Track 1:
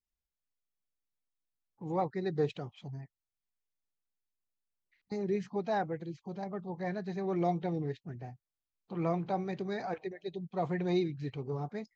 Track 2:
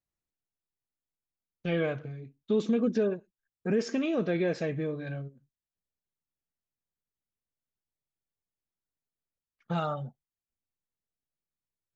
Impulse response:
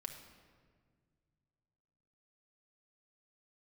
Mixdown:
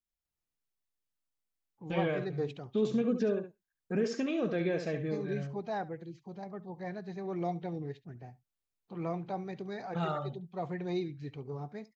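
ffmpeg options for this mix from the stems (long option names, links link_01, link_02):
-filter_complex "[0:a]volume=-4dB,asplit=2[link_01][link_02];[link_02]volume=-20dB[link_03];[1:a]adelay=250,volume=-3.5dB,asplit=2[link_04][link_05];[link_05]volume=-9dB[link_06];[link_03][link_06]amix=inputs=2:normalize=0,aecho=0:1:70:1[link_07];[link_01][link_04][link_07]amix=inputs=3:normalize=0"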